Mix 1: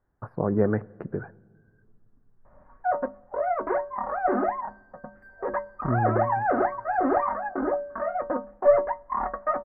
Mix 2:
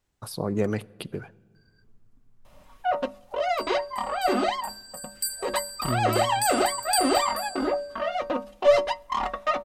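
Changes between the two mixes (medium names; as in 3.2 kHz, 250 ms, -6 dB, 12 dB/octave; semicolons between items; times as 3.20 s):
speech -3.5 dB; second sound: send on; master: remove elliptic low-pass 1.7 kHz, stop band 50 dB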